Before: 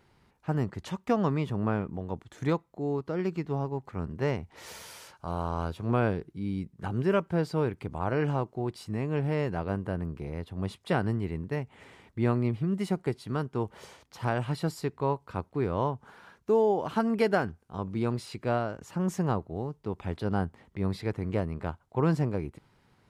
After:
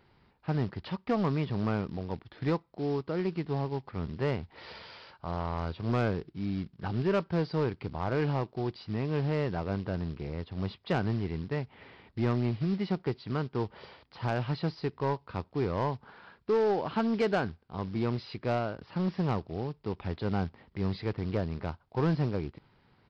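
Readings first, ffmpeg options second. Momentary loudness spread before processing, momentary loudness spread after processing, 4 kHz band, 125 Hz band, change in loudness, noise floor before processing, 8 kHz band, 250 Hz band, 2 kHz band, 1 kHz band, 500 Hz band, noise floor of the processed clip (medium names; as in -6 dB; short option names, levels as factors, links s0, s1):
10 LU, 9 LU, +1.0 dB, -1.0 dB, -1.5 dB, -66 dBFS, under -10 dB, -1.5 dB, -1.5 dB, -2.0 dB, -2.0 dB, -66 dBFS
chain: -af "aresample=11025,acrusher=bits=5:mode=log:mix=0:aa=0.000001,aresample=44100,asoftclip=type=tanh:threshold=0.1"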